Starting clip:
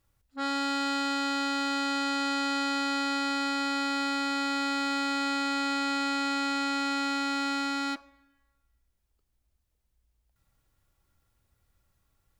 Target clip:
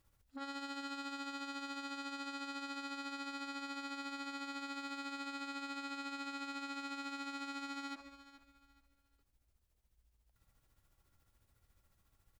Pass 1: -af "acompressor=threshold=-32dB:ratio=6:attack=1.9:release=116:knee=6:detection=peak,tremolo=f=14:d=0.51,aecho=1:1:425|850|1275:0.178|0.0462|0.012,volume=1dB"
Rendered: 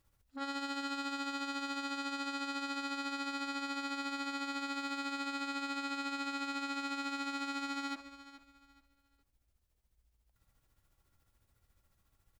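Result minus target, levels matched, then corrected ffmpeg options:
downward compressor: peak gain reduction −5.5 dB
-af "acompressor=threshold=-38.5dB:ratio=6:attack=1.9:release=116:knee=6:detection=peak,tremolo=f=14:d=0.51,aecho=1:1:425|850|1275:0.178|0.0462|0.012,volume=1dB"

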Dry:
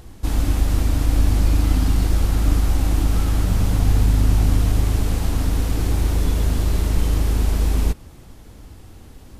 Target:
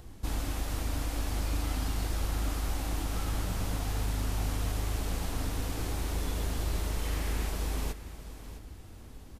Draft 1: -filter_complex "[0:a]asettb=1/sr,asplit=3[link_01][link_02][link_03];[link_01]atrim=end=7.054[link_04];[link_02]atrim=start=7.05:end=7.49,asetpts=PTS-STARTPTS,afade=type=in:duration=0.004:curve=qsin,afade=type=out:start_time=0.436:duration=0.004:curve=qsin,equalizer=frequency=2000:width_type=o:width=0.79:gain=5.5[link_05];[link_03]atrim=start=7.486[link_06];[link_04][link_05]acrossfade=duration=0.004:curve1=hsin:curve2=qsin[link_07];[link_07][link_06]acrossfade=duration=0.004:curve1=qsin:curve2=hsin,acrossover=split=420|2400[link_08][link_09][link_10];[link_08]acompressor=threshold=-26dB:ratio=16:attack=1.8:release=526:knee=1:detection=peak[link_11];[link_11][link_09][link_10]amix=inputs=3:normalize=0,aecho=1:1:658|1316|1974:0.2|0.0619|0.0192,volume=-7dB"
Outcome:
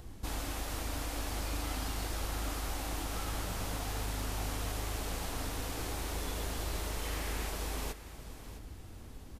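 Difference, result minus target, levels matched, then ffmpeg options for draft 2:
downward compressor: peak gain reduction +6.5 dB
-filter_complex "[0:a]asettb=1/sr,asplit=3[link_01][link_02][link_03];[link_01]atrim=end=7.054[link_04];[link_02]atrim=start=7.05:end=7.49,asetpts=PTS-STARTPTS,afade=type=in:duration=0.004:curve=qsin,afade=type=out:start_time=0.436:duration=0.004:curve=qsin,equalizer=frequency=2000:width_type=o:width=0.79:gain=5.5[link_05];[link_03]atrim=start=7.486[link_06];[link_04][link_05]acrossfade=duration=0.004:curve1=hsin:curve2=qsin[link_07];[link_07][link_06]acrossfade=duration=0.004:curve1=qsin:curve2=hsin,acrossover=split=420|2400[link_08][link_09][link_10];[link_08]acompressor=threshold=-19dB:ratio=16:attack=1.8:release=526:knee=1:detection=peak[link_11];[link_11][link_09][link_10]amix=inputs=3:normalize=0,aecho=1:1:658|1316|1974:0.2|0.0619|0.0192,volume=-7dB"

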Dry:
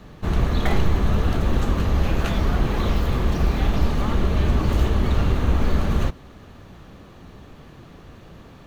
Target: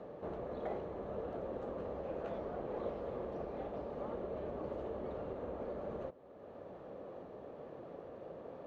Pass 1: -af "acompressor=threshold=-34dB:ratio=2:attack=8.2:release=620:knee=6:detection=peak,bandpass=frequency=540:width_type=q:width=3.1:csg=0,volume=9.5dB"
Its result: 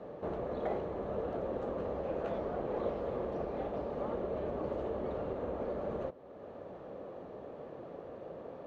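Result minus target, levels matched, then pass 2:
downward compressor: peak gain reduction −5 dB
-af "acompressor=threshold=-44dB:ratio=2:attack=8.2:release=620:knee=6:detection=peak,bandpass=frequency=540:width_type=q:width=3.1:csg=0,volume=9.5dB"

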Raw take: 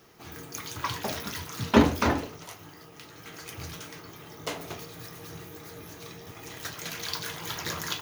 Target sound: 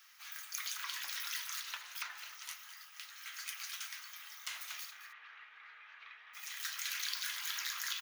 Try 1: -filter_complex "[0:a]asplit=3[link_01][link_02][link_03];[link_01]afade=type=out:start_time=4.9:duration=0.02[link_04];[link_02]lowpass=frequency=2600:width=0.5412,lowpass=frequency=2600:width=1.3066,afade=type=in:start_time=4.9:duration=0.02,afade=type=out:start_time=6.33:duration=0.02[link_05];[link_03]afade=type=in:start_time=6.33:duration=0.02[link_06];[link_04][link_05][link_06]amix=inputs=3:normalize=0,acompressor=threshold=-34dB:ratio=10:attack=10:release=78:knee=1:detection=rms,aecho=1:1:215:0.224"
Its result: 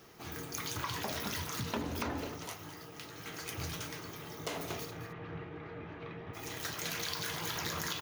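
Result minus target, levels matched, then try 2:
1,000 Hz band +7.5 dB
-filter_complex "[0:a]asplit=3[link_01][link_02][link_03];[link_01]afade=type=out:start_time=4.9:duration=0.02[link_04];[link_02]lowpass=frequency=2600:width=0.5412,lowpass=frequency=2600:width=1.3066,afade=type=in:start_time=4.9:duration=0.02,afade=type=out:start_time=6.33:duration=0.02[link_05];[link_03]afade=type=in:start_time=6.33:duration=0.02[link_06];[link_04][link_05][link_06]amix=inputs=3:normalize=0,acompressor=threshold=-34dB:ratio=10:attack=10:release=78:knee=1:detection=rms,highpass=frequency=1400:width=0.5412,highpass=frequency=1400:width=1.3066,aecho=1:1:215:0.224"

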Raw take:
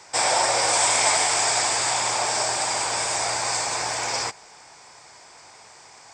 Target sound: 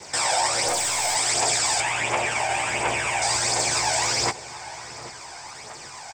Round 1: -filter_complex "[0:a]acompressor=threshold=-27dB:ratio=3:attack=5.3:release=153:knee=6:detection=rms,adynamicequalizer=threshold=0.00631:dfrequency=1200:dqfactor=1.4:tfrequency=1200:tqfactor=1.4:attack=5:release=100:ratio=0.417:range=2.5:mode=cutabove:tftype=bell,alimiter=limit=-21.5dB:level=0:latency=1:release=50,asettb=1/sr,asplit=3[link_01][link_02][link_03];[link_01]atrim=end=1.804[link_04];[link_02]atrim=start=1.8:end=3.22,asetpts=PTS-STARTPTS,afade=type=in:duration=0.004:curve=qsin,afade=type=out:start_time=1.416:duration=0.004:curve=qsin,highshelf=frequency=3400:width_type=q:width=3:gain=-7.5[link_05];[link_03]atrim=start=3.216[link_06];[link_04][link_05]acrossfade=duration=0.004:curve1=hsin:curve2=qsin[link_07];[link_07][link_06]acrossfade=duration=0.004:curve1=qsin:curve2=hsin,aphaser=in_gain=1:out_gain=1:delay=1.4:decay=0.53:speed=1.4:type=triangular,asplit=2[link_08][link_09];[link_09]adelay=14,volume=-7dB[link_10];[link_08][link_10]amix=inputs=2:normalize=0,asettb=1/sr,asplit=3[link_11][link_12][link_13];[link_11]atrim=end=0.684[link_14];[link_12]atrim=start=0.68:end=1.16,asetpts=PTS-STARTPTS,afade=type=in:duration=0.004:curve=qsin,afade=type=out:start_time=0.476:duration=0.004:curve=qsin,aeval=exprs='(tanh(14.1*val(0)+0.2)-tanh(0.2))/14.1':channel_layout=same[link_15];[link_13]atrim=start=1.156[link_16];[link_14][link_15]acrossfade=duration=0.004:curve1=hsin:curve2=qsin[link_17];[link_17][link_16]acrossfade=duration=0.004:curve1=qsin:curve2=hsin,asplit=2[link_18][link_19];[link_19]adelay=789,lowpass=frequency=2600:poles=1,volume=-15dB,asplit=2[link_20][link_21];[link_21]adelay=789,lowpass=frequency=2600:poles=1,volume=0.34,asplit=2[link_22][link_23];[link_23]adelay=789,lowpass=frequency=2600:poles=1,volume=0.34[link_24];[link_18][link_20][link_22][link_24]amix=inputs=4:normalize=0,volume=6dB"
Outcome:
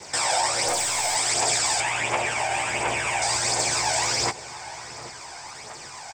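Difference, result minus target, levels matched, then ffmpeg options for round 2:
downward compressor: peak gain reduction +10 dB
-filter_complex "[0:a]adynamicequalizer=threshold=0.00631:dfrequency=1200:dqfactor=1.4:tfrequency=1200:tqfactor=1.4:attack=5:release=100:ratio=0.417:range=2.5:mode=cutabove:tftype=bell,alimiter=limit=-21.5dB:level=0:latency=1:release=50,asettb=1/sr,asplit=3[link_01][link_02][link_03];[link_01]atrim=end=1.804[link_04];[link_02]atrim=start=1.8:end=3.22,asetpts=PTS-STARTPTS,afade=type=in:duration=0.004:curve=qsin,afade=type=out:start_time=1.416:duration=0.004:curve=qsin,highshelf=frequency=3400:width_type=q:width=3:gain=-7.5[link_05];[link_03]atrim=start=3.216[link_06];[link_04][link_05]acrossfade=duration=0.004:curve1=hsin:curve2=qsin[link_07];[link_07][link_06]acrossfade=duration=0.004:curve1=qsin:curve2=hsin,aphaser=in_gain=1:out_gain=1:delay=1.4:decay=0.53:speed=1.4:type=triangular,asplit=2[link_08][link_09];[link_09]adelay=14,volume=-7dB[link_10];[link_08][link_10]amix=inputs=2:normalize=0,asettb=1/sr,asplit=3[link_11][link_12][link_13];[link_11]atrim=end=0.684[link_14];[link_12]atrim=start=0.68:end=1.16,asetpts=PTS-STARTPTS,afade=type=in:duration=0.004:curve=qsin,afade=type=out:start_time=0.476:duration=0.004:curve=qsin,aeval=exprs='(tanh(14.1*val(0)+0.2)-tanh(0.2))/14.1':channel_layout=same[link_15];[link_13]atrim=start=1.156[link_16];[link_14][link_15]acrossfade=duration=0.004:curve1=hsin:curve2=qsin[link_17];[link_17][link_16]acrossfade=duration=0.004:curve1=qsin:curve2=hsin,asplit=2[link_18][link_19];[link_19]adelay=789,lowpass=frequency=2600:poles=1,volume=-15dB,asplit=2[link_20][link_21];[link_21]adelay=789,lowpass=frequency=2600:poles=1,volume=0.34,asplit=2[link_22][link_23];[link_23]adelay=789,lowpass=frequency=2600:poles=1,volume=0.34[link_24];[link_18][link_20][link_22][link_24]amix=inputs=4:normalize=0,volume=6dB"

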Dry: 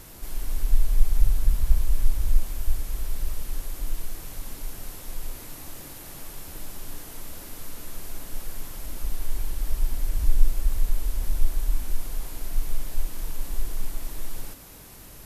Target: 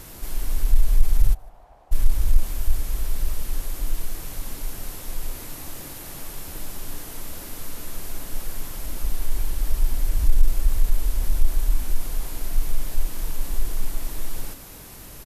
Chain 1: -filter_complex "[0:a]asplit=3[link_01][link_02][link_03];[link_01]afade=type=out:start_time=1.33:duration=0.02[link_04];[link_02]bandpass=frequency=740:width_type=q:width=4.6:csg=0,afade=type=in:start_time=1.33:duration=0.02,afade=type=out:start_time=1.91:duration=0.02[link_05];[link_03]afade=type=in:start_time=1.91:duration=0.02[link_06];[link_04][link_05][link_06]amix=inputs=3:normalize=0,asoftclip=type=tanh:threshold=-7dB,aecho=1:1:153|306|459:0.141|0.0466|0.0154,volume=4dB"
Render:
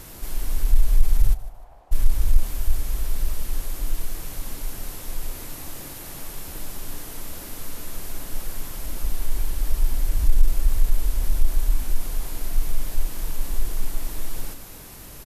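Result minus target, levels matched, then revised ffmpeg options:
echo-to-direct +10 dB
-filter_complex "[0:a]asplit=3[link_01][link_02][link_03];[link_01]afade=type=out:start_time=1.33:duration=0.02[link_04];[link_02]bandpass=frequency=740:width_type=q:width=4.6:csg=0,afade=type=in:start_time=1.33:duration=0.02,afade=type=out:start_time=1.91:duration=0.02[link_05];[link_03]afade=type=in:start_time=1.91:duration=0.02[link_06];[link_04][link_05][link_06]amix=inputs=3:normalize=0,asoftclip=type=tanh:threshold=-7dB,aecho=1:1:153|306:0.0447|0.0147,volume=4dB"

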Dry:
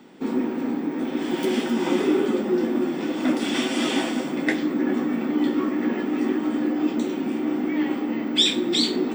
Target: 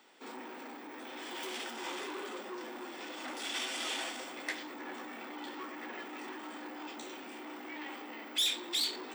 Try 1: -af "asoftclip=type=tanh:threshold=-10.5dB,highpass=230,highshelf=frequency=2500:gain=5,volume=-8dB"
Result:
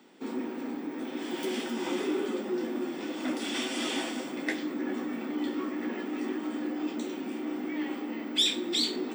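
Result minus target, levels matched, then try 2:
soft clipping: distortion −13 dB; 250 Hz band +8.5 dB
-af "asoftclip=type=tanh:threshold=-21dB,highpass=650,highshelf=frequency=2500:gain=5,volume=-8dB"

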